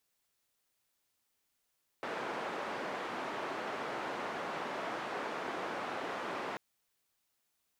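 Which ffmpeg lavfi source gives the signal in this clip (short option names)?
-f lavfi -i "anoisesrc=c=white:d=4.54:r=44100:seed=1,highpass=f=270,lowpass=f=1200,volume=-20.9dB"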